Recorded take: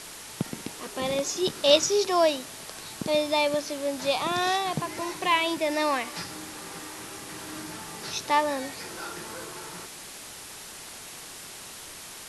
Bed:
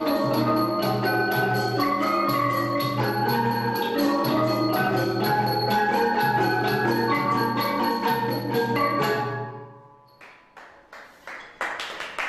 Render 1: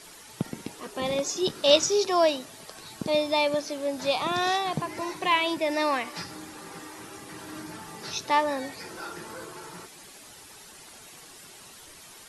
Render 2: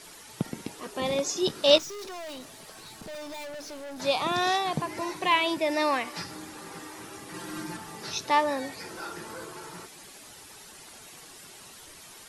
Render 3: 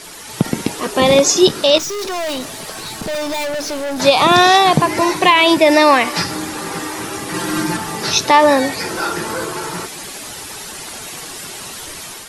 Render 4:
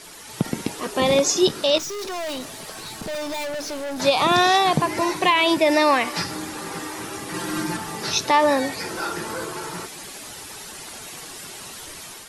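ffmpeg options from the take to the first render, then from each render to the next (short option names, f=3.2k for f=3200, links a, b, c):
-af "afftdn=nr=9:nf=-43"
-filter_complex "[0:a]asettb=1/sr,asplit=3[a][b][c];[a]atrim=end=1.784[d];[b]atrim=start=1.78:end=4,asetpts=PTS-STARTPTS,afade=t=in:d=0.004:c=qsin,afade=t=out:st=2.216:d=0.004:c=qsin,aeval=exprs='(tanh(79.4*val(0)+0.2)-tanh(0.2))/79.4':c=same[e];[c]atrim=start=3.996[f];[d][e]acrossfade=d=0.004:c1=hsin:c2=qsin[g];[g][f]acrossfade=d=0.004:c1=qsin:c2=hsin,asettb=1/sr,asplit=3[h][i][j];[h]atrim=end=7.334[k];[i]atrim=start=7.33:end=7.77,asetpts=PTS-STARTPTS,afade=t=in:d=0.004:c=qsin,afade=t=out:st=0.436:d=0.004:c=qsin,aecho=1:1:5.7:0.91,atrim=end_sample=19404[l];[j]atrim=start=7.766[m];[k][l]acrossfade=d=0.004:c1=hsin:c2=qsin[n];[n][m]acrossfade=d=0.004:c1=qsin:c2=hsin"
-af "dynaudnorm=f=120:g=5:m=5dB,alimiter=level_in=12.5dB:limit=-1dB:release=50:level=0:latency=1"
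-af "volume=-7dB"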